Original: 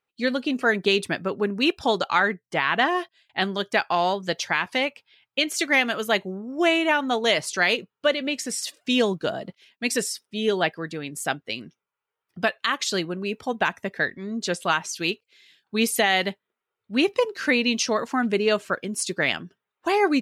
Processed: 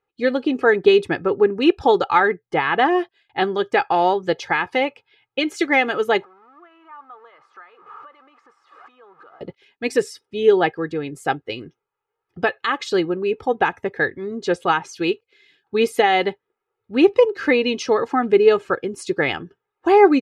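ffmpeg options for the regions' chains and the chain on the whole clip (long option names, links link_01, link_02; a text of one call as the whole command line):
ffmpeg -i in.wav -filter_complex "[0:a]asettb=1/sr,asplit=3[link_01][link_02][link_03];[link_01]atrim=end=6.234[link_04];[link_02]atrim=start=6.23:end=9.41,asetpts=PTS-STARTPTS,afade=type=in:duration=0.004:curve=qsin,afade=type=out:start_time=3.176:duration=0.004:curve=qsin,aeval=exprs='val(0)+0.5*0.0422*sgn(val(0))':channel_layout=same,acompressor=threshold=-33dB:ratio=4:attack=3.2:release=140:knee=1:detection=peak,bandpass=frequency=1200:width_type=q:width=6.7[link_05];[link_03]atrim=start=9.406[link_06];[link_04][link_05]acrossfade=duration=0.004:curve1=hsin:curve2=qsin[link_07];[link_07][link_06]acrossfade=duration=0.004:curve1=qsin:curve2=hsin,lowpass=frequency=1000:poles=1,aecho=1:1:2.4:0.64,volume=6.5dB" out.wav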